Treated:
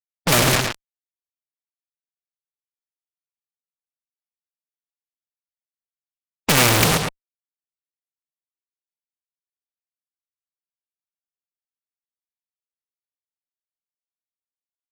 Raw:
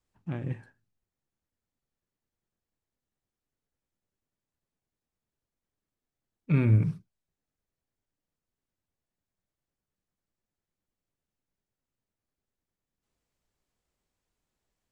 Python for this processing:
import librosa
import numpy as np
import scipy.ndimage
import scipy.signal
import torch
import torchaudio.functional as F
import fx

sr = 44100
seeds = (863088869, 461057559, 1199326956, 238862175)

y = fx.small_body(x, sr, hz=(630.0, 1200.0, 2300.0), ring_ms=65, db=17)
y = fx.fuzz(y, sr, gain_db=51.0, gate_db=-44.0)
y = y + 10.0 ** (-10.5 / 20.0) * np.pad(y, (int(111 * sr / 1000.0), 0))[:len(y)]
y = fx.wow_flutter(y, sr, seeds[0], rate_hz=2.1, depth_cents=27.0)
y = fx.spectral_comp(y, sr, ratio=2.0)
y = y * librosa.db_to_amplitude(6.5)